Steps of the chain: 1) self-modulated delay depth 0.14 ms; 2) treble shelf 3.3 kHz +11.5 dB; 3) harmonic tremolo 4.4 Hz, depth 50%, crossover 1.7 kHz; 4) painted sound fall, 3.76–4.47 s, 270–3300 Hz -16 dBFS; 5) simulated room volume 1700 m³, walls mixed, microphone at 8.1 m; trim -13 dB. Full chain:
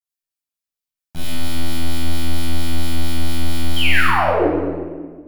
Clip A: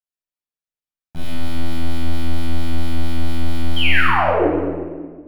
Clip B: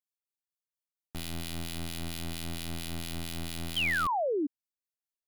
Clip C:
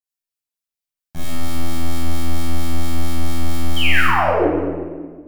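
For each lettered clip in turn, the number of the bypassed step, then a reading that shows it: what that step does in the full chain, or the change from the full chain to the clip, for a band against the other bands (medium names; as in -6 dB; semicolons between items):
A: 2, 8 kHz band -10.0 dB; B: 5, echo-to-direct 9.5 dB to none; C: 1, 4 kHz band -2.0 dB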